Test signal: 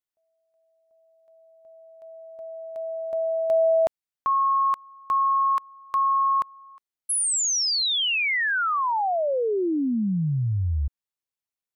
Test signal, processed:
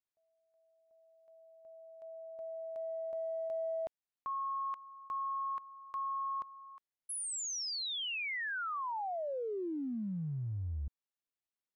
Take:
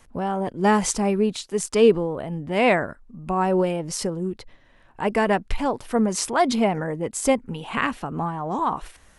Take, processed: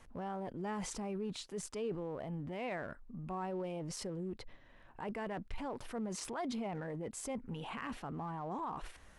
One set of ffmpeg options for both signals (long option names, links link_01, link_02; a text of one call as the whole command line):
ffmpeg -i in.wav -af "highshelf=frequency=5200:gain=-8,areverse,acompressor=threshold=-33dB:ratio=4:attack=0.13:release=59:knee=6:detection=peak,areverse,volume=-4.5dB" out.wav